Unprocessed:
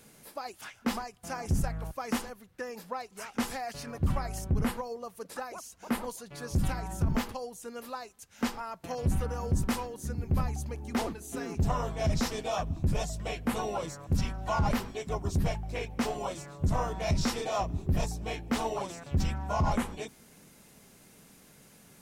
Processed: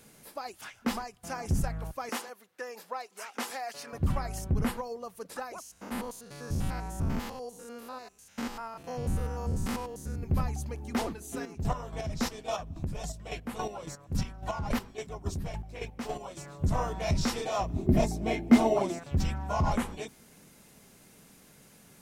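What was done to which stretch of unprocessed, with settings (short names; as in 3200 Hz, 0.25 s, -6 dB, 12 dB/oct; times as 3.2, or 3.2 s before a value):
2.09–3.93 HPF 400 Hz
5.62–10.23 stepped spectrum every 0.1 s
11.37–16.37 chopper 3.6 Hz, depth 60%, duty 30%
17.76–18.99 small resonant body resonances 240/350/630/2100 Hz, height 13 dB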